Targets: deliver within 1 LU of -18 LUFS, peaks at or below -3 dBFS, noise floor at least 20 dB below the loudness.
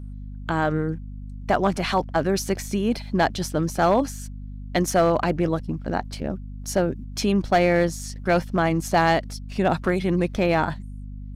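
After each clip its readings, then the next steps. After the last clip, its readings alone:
clipped 0.4%; flat tops at -11.0 dBFS; hum 50 Hz; harmonics up to 250 Hz; hum level -33 dBFS; loudness -23.5 LUFS; peak -11.0 dBFS; loudness target -18.0 LUFS
-> clip repair -11 dBFS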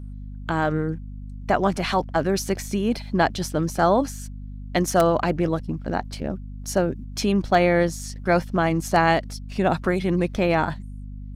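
clipped 0.0%; hum 50 Hz; harmonics up to 250 Hz; hum level -33 dBFS
-> notches 50/100/150/200/250 Hz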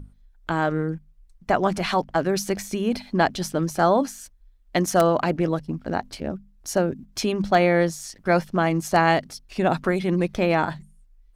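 hum none; loudness -23.5 LUFS; peak -3.5 dBFS; loudness target -18.0 LUFS
-> gain +5.5 dB; limiter -3 dBFS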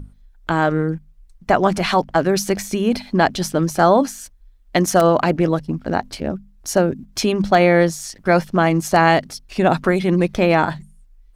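loudness -18.0 LUFS; peak -3.0 dBFS; noise floor -50 dBFS

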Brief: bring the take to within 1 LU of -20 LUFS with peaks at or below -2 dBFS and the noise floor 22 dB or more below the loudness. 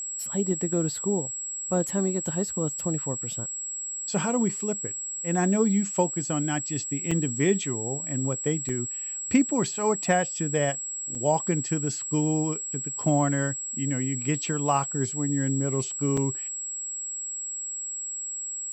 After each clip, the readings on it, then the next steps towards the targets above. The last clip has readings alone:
dropouts 4; longest dropout 4.4 ms; steady tone 7700 Hz; tone level -31 dBFS; loudness -27.0 LUFS; peak -10.0 dBFS; loudness target -20.0 LUFS
-> interpolate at 7.11/8.69/11.15/16.17, 4.4 ms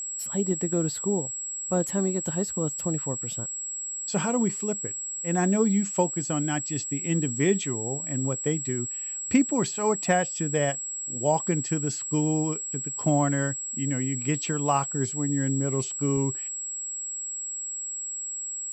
dropouts 0; steady tone 7700 Hz; tone level -31 dBFS
-> notch 7700 Hz, Q 30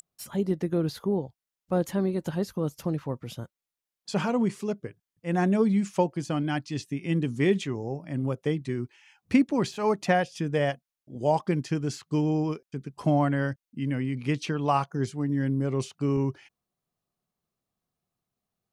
steady tone none; loudness -28.0 LUFS; peak -10.5 dBFS; loudness target -20.0 LUFS
-> gain +8 dB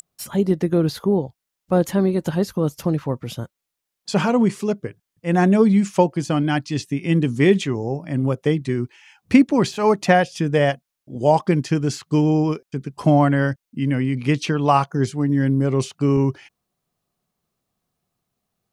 loudness -20.0 LUFS; peak -2.5 dBFS; noise floor -82 dBFS

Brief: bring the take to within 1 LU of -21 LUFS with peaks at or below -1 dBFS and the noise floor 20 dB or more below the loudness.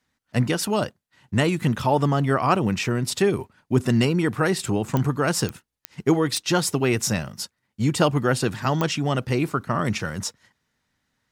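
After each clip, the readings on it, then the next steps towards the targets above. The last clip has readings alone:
clicks 5; loudness -23.5 LUFS; peak -6.0 dBFS; loudness target -21.0 LUFS
-> de-click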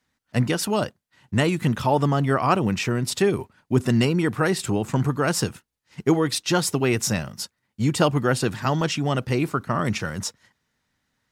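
clicks 0; loudness -23.5 LUFS; peak -6.0 dBFS; loudness target -21.0 LUFS
-> gain +2.5 dB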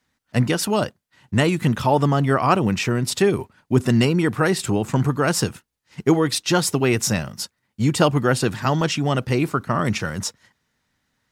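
loudness -21.0 LUFS; peak -4.0 dBFS; noise floor -75 dBFS

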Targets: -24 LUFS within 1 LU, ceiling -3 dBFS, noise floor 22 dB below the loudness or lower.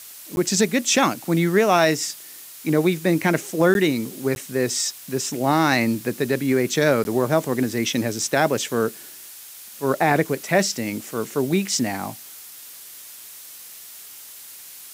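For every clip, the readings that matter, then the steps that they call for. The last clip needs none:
dropouts 4; longest dropout 11 ms; noise floor -41 dBFS; noise floor target -44 dBFS; loudness -21.5 LUFS; peak -5.5 dBFS; loudness target -24.0 LUFS
-> interpolate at 0.36/3.74/4.35/7.04, 11 ms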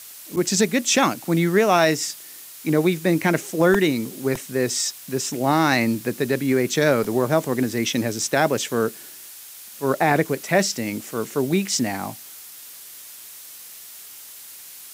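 dropouts 0; noise floor -41 dBFS; noise floor target -44 dBFS
-> noise print and reduce 6 dB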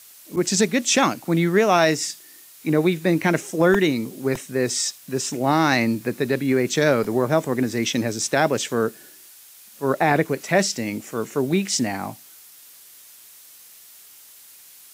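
noise floor -47 dBFS; loudness -21.5 LUFS; peak -6.0 dBFS; loudness target -24.0 LUFS
-> gain -2.5 dB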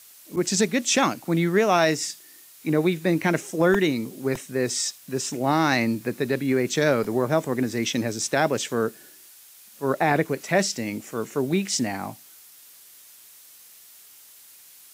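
loudness -24.0 LUFS; peak -8.5 dBFS; noise floor -50 dBFS

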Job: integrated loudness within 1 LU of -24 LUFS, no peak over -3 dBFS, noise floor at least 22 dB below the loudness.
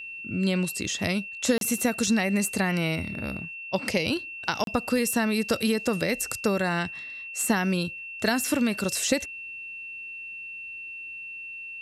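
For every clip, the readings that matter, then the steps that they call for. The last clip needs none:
dropouts 2; longest dropout 32 ms; steady tone 2700 Hz; tone level -36 dBFS; loudness -27.5 LUFS; peak -10.5 dBFS; loudness target -24.0 LUFS
-> interpolate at 1.58/4.64, 32 ms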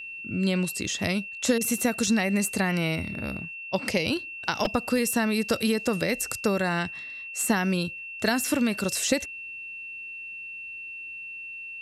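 dropouts 0; steady tone 2700 Hz; tone level -36 dBFS
-> notch 2700 Hz, Q 30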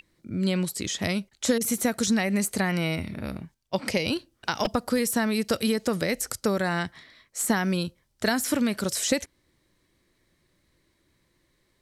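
steady tone none; loudness -27.0 LUFS; peak -10.5 dBFS; loudness target -24.0 LUFS
-> gain +3 dB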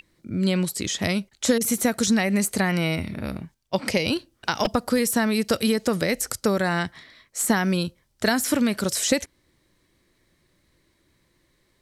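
loudness -24.0 LUFS; peak -7.5 dBFS; noise floor -67 dBFS

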